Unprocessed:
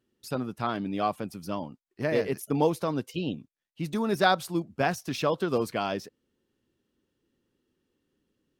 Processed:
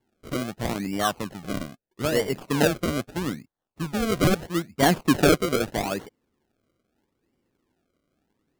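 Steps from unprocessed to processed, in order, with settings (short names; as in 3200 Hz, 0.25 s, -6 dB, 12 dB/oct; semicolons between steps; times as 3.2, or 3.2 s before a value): 4.82–5.38 bell 270 Hz +12.5 dB 1.7 oct; decimation with a swept rate 34×, swing 100% 0.78 Hz; gain +2.5 dB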